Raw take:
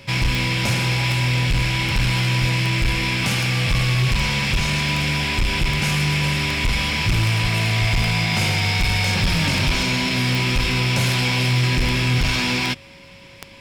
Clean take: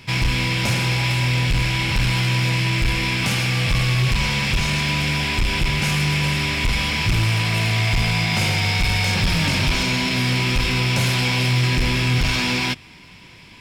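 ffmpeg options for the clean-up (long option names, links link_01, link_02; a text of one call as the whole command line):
ffmpeg -i in.wav -filter_complex "[0:a]adeclick=threshold=4,bandreject=frequency=550:width=30,asplit=3[link_01][link_02][link_03];[link_01]afade=type=out:start_time=2.4:duration=0.02[link_04];[link_02]highpass=frequency=140:width=0.5412,highpass=frequency=140:width=1.3066,afade=type=in:start_time=2.4:duration=0.02,afade=type=out:start_time=2.52:duration=0.02[link_05];[link_03]afade=type=in:start_time=2.52:duration=0.02[link_06];[link_04][link_05][link_06]amix=inputs=3:normalize=0,asplit=3[link_07][link_08][link_09];[link_07]afade=type=out:start_time=7.42:duration=0.02[link_10];[link_08]highpass=frequency=140:width=0.5412,highpass=frequency=140:width=1.3066,afade=type=in:start_time=7.42:duration=0.02,afade=type=out:start_time=7.54:duration=0.02[link_11];[link_09]afade=type=in:start_time=7.54:duration=0.02[link_12];[link_10][link_11][link_12]amix=inputs=3:normalize=0,asplit=3[link_13][link_14][link_15];[link_13]afade=type=out:start_time=7.8:duration=0.02[link_16];[link_14]highpass=frequency=140:width=0.5412,highpass=frequency=140:width=1.3066,afade=type=in:start_time=7.8:duration=0.02,afade=type=out:start_time=7.92:duration=0.02[link_17];[link_15]afade=type=in:start_time=7.92:duration=0.02[link_18];[link_16][link_17][link_18]amix=inputs=3:normalize=0" out.wav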